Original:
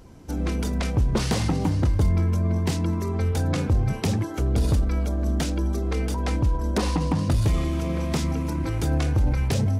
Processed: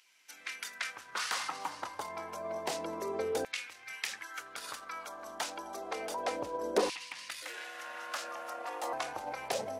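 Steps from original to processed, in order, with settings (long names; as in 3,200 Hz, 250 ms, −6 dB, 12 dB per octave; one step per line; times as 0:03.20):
0:07.42–0:08.93: ring modulation 410 Hz
auto-filter high-pass saw down 0.29 Hz 430–2,500 Hz
level −5.5 dB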